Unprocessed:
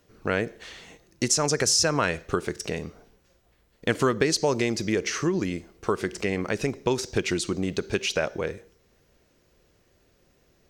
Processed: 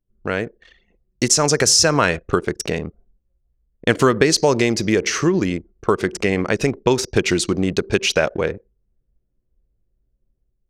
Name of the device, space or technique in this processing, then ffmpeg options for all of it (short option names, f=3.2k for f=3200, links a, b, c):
voice memo with heavy noise removal: -af "anlmdn=1,dynaudnorm=f=690:g=3:m=6dB,volume=2.5dB"